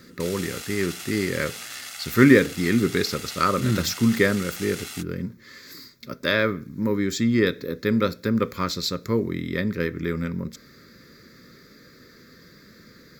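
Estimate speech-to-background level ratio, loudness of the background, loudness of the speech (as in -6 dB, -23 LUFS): 11.5 dB, -35.5 LUFS, -24.0 LUFS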